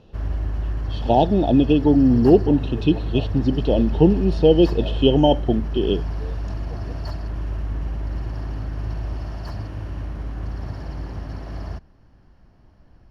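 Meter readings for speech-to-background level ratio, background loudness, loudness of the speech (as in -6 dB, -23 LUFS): 10.5 dB, -29.0 LUFS, -18.5 LUFS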